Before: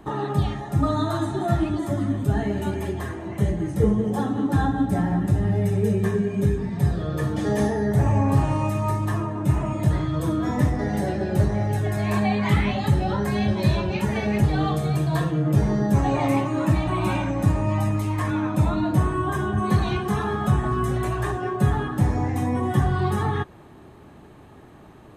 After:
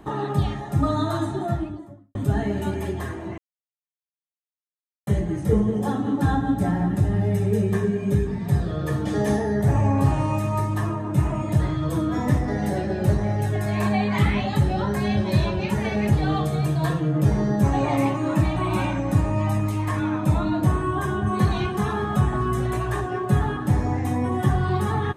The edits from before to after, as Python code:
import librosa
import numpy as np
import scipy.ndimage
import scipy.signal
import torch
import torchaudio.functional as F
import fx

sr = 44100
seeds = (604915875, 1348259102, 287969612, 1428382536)

y = fx.studio_fade_out(x, sr, start_s=1.15, length_s=1.0)
y = fx.edit(y, sr, fx.insert_silence(at_s=3.38, length_s=1.69), tone=tone)